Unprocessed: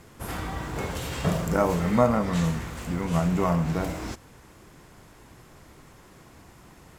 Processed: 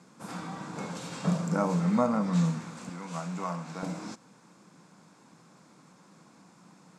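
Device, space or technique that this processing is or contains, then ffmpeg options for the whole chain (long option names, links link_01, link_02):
television speaker: -filter_complex "[0:a]highpass=frequency=170:width=0.5412,highpass=frequency=170:width=1.3066,equalizer=frequency=180:width_type=q:width=4:gain=8,equalizer=frequency=390:width_type=q:width=4:gain=-8,equalizer=frequency=660:width_type=q:width=4:gain=-4,equalizer=frequency=1900:width_type=q:width=4:gain=-8,equalizer=frequency=3000:width_type=q:width=4:gain=-8,lowpass=frequency=8700:width=0.5412,lowpass=frequency=8700:width=1.3066,asettb=1/sr,asplit=3[link_01][link_02][link_03];[link_01]atrim=end=2.894[link_04];[link_02]atrim=start=2.89:end=3.83,asetpts=PTS-STARTPTS,afade=type=in:duration=0.004:curve=qsin,afade=type=out:start_time=0.936:duration=0.004:curve=qsin,highpass=frequency=740:poles=1[link_05];[link_03]atrim=start=3.826[link_06];[link_04][link_05]acrossfade=duration=0.004:curve1=hsin:curve2=qsin[link_07];[link_07][link_06]acrossfade=duration=0.004:curve1=qsin:curve2=hsin,volume=-3.5dB"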